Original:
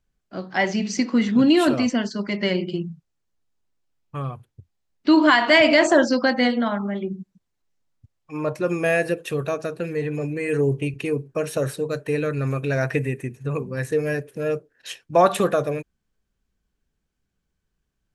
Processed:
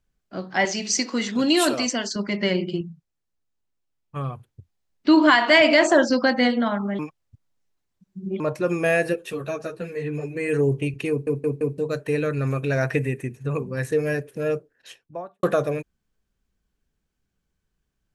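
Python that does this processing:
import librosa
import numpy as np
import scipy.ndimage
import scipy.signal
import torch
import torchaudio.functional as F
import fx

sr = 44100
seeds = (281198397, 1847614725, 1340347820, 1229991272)

y = fx.bass_treble(x, sr, bass_db=-13, treble_db=11, at=(0.65, 2.16))
y = fx.highpass(y, sr, hz=190.0, slope=6, at=(5.35, 6.1))
y = fx.ensemble(y, sr, at=(9.12, 10.35), fade=0.02)
y = fx.studio_fade_out(y, sr, start_s=14.47, length_s=0.96)
y = fx.edit(y, sr, fx.clip_gain(start_s=2.81, length_s=1.35, db=-4.5),
    fx.reverse_span(start_s=6.99, length_s=1.41),
    fx.stutter_over(start_s=11.1, slice_s=0.17, count=4), tone=tone)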